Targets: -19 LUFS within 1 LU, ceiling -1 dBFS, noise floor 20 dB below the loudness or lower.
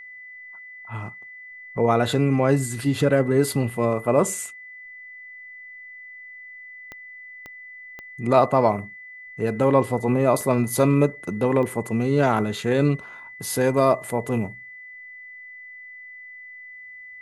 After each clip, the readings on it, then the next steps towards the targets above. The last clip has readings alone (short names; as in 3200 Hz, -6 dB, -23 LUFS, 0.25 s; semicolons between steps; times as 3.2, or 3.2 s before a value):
clicks 5; steady tone 2000 Hz; tone level -39 dBFS; loudness -22.0 LUFS; peak -2.5 dBFS; loudness target -19.0 LUFS
-> de-click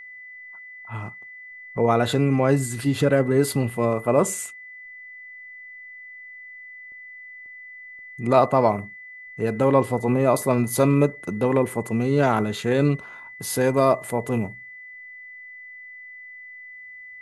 clicks 0; steady tone 2000 Hz; tone level -39 dBFS
-> notch 2000 Hz, Q 30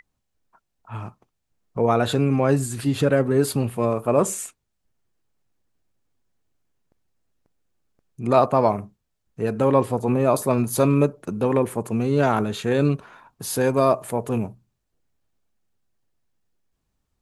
steady tone none; loudness -22.0 LUFS; peak -2.5 dBFS; loudness target -19.0 LUFS
-> gain +3 dB; limiter -1 dBFS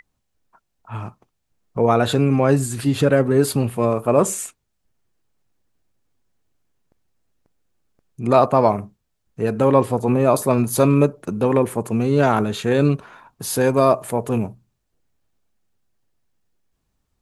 loudness -19.0 LUFS; peak -1.0 dBFS; noise floor -74 dBFS